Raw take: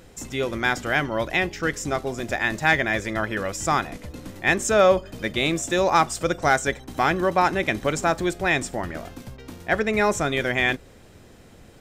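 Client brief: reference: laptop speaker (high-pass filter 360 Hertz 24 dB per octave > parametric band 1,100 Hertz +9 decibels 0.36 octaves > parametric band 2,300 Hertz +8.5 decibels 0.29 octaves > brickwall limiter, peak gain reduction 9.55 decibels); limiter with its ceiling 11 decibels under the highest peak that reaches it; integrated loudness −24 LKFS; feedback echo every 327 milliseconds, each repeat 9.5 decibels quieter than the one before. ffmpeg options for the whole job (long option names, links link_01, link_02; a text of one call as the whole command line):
ffmpeg -i in.wav -af "alimiter=limit=-18dB:level=0:latency=1,highpass=frequency=360:width=0.5412,highpass=frequency=360:width=1.3066,equalizer=frequency=1100:width_type=o:width=0.36:gain=9,equalizer=frequency=2300:width_type=o:width=0.29:gain=8.5,aecho=1:1:327|654|981|1308:0.335|0.111|0.0365|0.012,volume=7.5dB,alimiter=limit=-14dB:level=0:latency=1" out.wav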